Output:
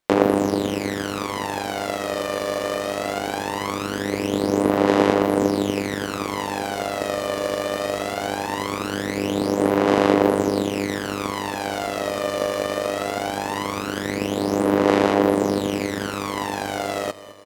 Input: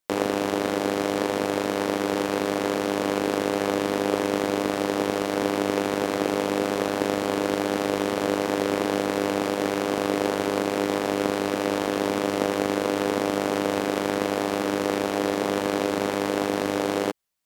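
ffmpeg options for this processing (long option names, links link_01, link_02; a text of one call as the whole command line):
ffmpeg -i in.wav -af "aecho=1:1:209|418|627|836|1045|1254:0.158|0.0919|0.0533|0.0309|0.0179|0.0104,aphaser=in_gain=1:out_gain=1:delay=1.7:decay=0.67:speed=0.2:type=sinusoidal,volume=-1dB" out.wav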